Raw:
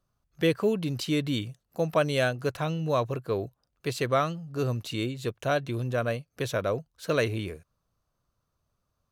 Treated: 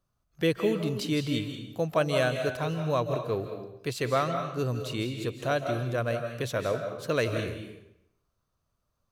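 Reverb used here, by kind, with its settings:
comb and all-pass reverb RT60 0.75 s, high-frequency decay 0.9×, pre-delay 120 ms, DRR 5.5 dB
level −1.5 dB

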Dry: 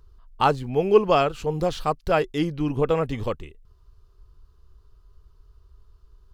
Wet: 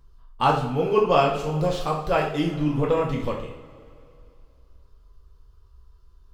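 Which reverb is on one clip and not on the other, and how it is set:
coupled-rooms reverb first 0.5 s, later 2.7 s, from −18 dB, DRR −2 dB
level −3.5 dB

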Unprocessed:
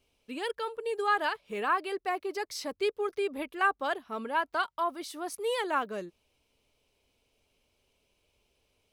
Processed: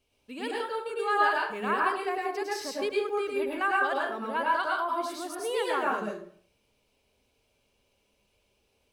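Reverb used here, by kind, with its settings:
dense smooth reverb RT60 0.53 s, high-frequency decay 0.6×, pre-delay 90 ms, DRR −3.5 dB
level −2.5 dB

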